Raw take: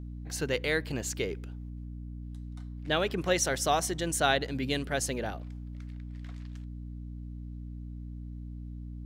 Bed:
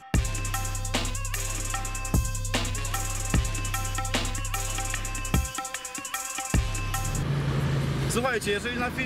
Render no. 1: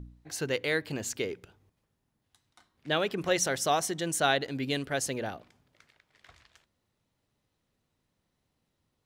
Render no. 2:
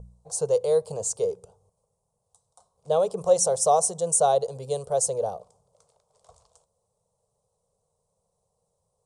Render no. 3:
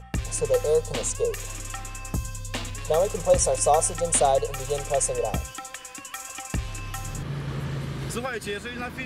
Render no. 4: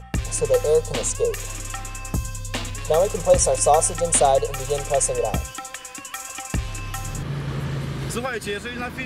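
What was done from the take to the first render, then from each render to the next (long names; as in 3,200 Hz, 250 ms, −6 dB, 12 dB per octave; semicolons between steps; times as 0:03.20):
hum removal 60 Hz, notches 5
drawn EQ curve 190 Hz 0 dB, 290 Hz −26 dB, 460 Hz +12 dB, 1,100 Hz +3 dB, 1,800 Hz −28 dB, 9,100 Hz +14 dB, 15,000 Hz −26 dB
mix in bed −4.5 dB
level +3.5 dB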